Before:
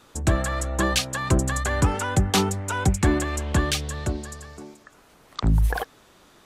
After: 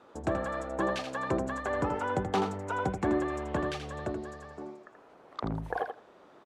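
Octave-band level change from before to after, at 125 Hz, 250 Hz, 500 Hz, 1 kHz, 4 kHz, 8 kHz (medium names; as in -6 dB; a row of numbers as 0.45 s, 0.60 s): -14.5 dB, -7.0 dB, -2.5 dB, -4.0 dB, -16.0 dB, -22.0 dB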